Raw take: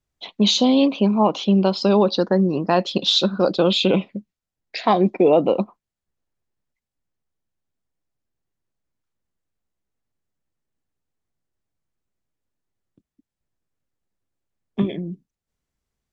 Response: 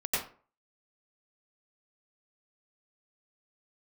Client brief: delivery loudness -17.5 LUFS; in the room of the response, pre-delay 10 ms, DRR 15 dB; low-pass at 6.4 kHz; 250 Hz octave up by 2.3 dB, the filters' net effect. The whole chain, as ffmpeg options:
-filter_complex "[0:a]lowpass=6400,equalizer=f=250:t=o:g=3,asplit=2[s0][s1];[1:a]atrim=start_sample=2205,adelay=10[s2];[s1][s2]afir=irnorm=-1:irlink=0,volume=0.0708[s3];[s0][s3]amix=inputs=2:normalize=0"

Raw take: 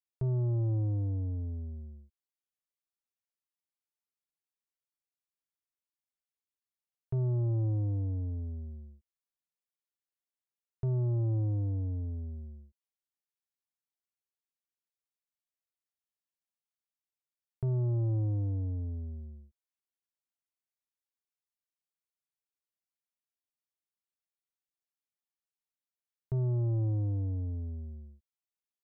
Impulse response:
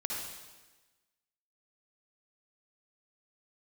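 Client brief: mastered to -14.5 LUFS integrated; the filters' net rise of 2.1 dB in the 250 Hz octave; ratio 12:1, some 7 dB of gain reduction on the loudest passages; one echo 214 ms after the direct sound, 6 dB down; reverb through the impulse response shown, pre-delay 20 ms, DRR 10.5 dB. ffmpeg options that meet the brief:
-filter_complex "[0:a]equalizer=f=250:t=o:g=3.5,acompressor=threshold=0.02:ratio=12,aecho=1:1:214:0.501,asplit=2[s0][s1];[1:a]atrim=start_sample=2205,adelay=20[s2];[s1][s2]afir=irnorm=-1:irlink=0,volume=0.2[s3];[s0][s3]amix=inputs=2:normalize=0,volume=14.1"

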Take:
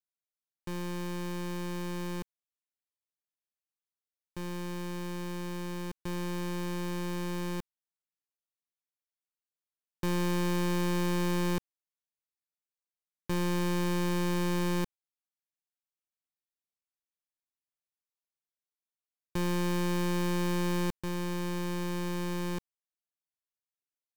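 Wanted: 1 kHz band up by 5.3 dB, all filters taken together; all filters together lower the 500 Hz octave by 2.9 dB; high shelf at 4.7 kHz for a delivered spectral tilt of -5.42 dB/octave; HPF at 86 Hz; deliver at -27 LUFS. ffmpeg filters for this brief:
-af "highpass=86,equalizer=f=500:t=o:g=-6,equalizer=f=1000:t=o:g=7.5,highshelf=f=4700:g=-7,volume=2.11"

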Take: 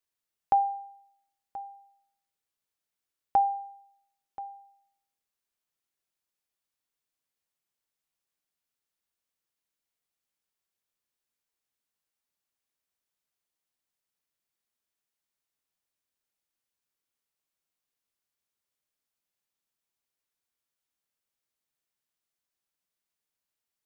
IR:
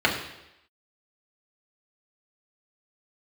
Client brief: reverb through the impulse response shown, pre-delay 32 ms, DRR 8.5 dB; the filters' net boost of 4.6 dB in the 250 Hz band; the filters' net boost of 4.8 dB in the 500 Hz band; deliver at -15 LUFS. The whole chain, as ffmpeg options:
-filter_complex "[0:a]equalizer=f=250:t=o:g=4,equalizer=f=500:t=o:g=6,asplit=2[s0][s1];[1:a]atrim=start_sample=2205,adelay=32[s2];[s1][s2]afir=irnorm=-1:irlink=0,volume=0.0531[s3];[s0][s3]amix=inputs=2:normalize=0,volume=3.55"

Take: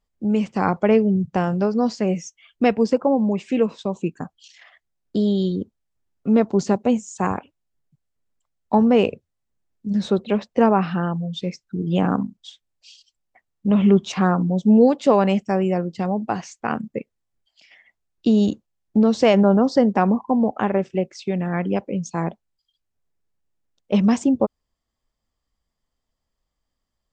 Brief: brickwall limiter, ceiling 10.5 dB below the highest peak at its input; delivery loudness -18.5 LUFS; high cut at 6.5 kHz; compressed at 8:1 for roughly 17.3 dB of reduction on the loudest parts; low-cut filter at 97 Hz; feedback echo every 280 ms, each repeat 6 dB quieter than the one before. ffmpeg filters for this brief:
-af "highpass=97,lowpass=6500,acompressor=threshold=0.0355:ratio=8,alimiter=level_in=1.26:limit=0.0631:level=0:latency=1,volume=0.794,aecho=1:1:280|560|840|1120|1400|1680:0.501|0.251|0.125|0.0626|0.0313|0.0157,volume=7.5"

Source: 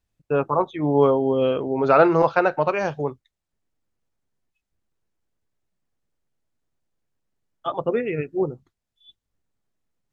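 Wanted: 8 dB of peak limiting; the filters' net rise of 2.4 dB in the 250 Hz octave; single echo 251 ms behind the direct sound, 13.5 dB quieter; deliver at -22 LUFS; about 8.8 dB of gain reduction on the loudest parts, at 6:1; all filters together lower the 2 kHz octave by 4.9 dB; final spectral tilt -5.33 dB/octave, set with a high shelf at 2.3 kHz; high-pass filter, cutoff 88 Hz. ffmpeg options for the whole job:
-af "highpass=88,equalizer=f=250:t=o:g=3.5,equalizer=f=2000:t=o:g=-5.5,highshelf=f=2300:g=-4,acompressor=threshold=0.1:ratio=6,alimiter=limit=0.119:level=0:latency=1,aecho=1:1:251:0.211,volume=2.11"

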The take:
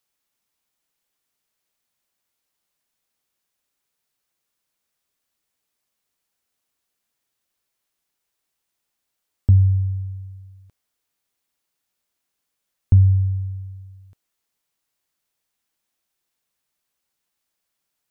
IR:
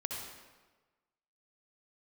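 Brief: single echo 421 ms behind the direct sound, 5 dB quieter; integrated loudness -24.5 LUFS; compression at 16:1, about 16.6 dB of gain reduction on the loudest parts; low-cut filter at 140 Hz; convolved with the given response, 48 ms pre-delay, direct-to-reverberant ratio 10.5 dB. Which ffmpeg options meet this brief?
-filter_complex "[0:a]highpass=140,acompressor=threshold=0.0224:ratio=16,aecho=1:1:421:0.562,asplit=2[s0][s1];[1:a]atrim=start_sample=2205,adelay=48[s2];[s1][s2]afir=irnorm=-1:irlink=0,volume=0.237[s3];[s0][s3]amix=inputs=2:normalize=0,volume=6.31"

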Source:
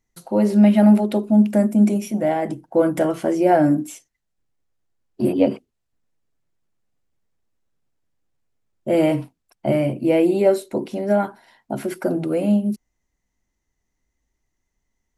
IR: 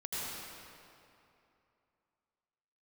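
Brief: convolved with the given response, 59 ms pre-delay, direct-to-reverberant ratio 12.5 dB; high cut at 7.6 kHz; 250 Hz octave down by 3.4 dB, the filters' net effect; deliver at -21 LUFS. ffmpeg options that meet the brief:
-filter_complex "[0:a]lowpass=7600,equalizer=f=250:t=o:g=-4.5,asplit=2[s0][s1];[1:a]atrim=start_sample=2205,adelay=59[s2];[s1][s2]afir=irnorm=-1:irlink=0,volume=0.158[s3];[s0][s3]amix=inputs=2:normalize=0,volume=1.06"

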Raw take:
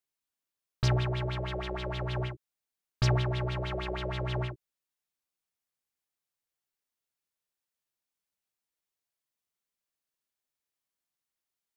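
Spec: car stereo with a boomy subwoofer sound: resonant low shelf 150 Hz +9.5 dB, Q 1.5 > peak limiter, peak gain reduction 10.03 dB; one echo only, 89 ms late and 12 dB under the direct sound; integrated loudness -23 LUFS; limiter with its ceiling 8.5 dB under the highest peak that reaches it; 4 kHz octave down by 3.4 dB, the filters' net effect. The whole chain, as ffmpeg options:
-af "equalizer=f=4000:t=o:g=-4.5,alimiter=level_in=1.12:limit=0.0631:level=0:latency=1,volume=0.891,lowshelf=f=150:t=q:w=1.5:g=9.5,aecho=1:1:89:0.251,volume=2.82,alimiter=limit=0.178:level=0:latency=1"

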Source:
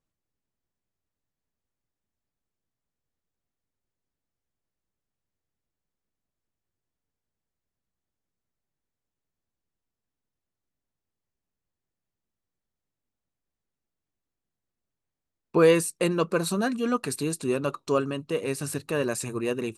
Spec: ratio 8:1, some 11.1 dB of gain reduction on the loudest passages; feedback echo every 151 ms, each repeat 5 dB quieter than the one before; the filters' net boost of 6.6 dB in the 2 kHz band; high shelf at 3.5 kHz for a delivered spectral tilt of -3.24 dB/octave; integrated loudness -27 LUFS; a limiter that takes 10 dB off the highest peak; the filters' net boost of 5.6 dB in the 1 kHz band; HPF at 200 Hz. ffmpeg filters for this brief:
-af "highpass=200,equalizer=f=1000:t=o:g=4.5,equalizer=f=2000:t=o:g=6.5,highshelf=f=3500:g=3,acompressor=threshold=0.0708:ratio=8,alimiter=limit=0.0944:level=0:latency=1,aecho=1:1:151|302|453|604|755|906|1057:0.562|0.315|0.176|0.0988|0.0553|0.031|0.0173,volume=1.5"

